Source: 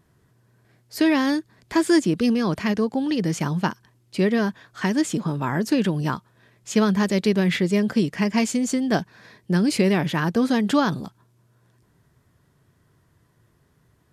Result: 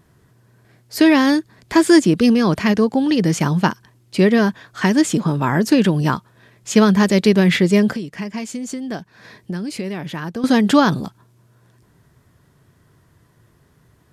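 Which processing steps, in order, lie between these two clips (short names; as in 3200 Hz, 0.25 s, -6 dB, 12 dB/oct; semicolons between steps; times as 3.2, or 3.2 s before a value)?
7.95–10.44 compressor 3:1, threshold -35 dBFS, peak gain reduction 15 dB; gain +6.5 dB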